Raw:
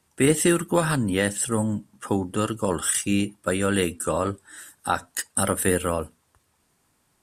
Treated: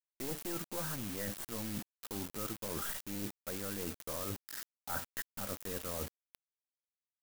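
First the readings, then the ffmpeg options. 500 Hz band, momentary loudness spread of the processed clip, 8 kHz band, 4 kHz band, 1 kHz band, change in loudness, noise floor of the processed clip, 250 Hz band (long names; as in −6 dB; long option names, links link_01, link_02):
−19.0 dB, 4 LU, −17.0 dB, −13.0 dB, −17.5 dB, −15.5 dB, below −85 dBFS, −19.0 dB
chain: -af "aeval=exprs='(tanh(7.08*val(0)+0.55)-tanh(0.55))/7.08':channel_layout=same,lowpass=1600,areverse,acompressor=threshold=-38dB:ratio=8,areverse,acrusher=bits=7:mix=0:aa=0.000001,aemphasis=mode=production:type=75kf,volume=-1dB"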